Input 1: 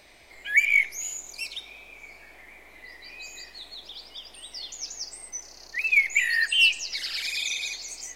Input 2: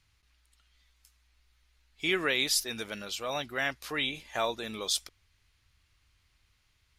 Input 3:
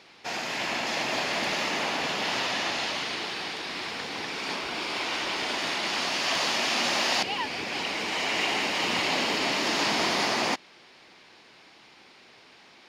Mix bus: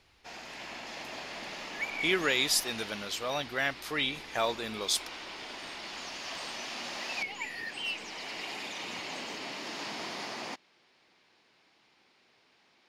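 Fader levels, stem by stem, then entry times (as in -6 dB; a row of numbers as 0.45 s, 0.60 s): -16.5 dB, +0.5 dB, -13.0 dB; 1.25 s, 0.00 s, 0.00 s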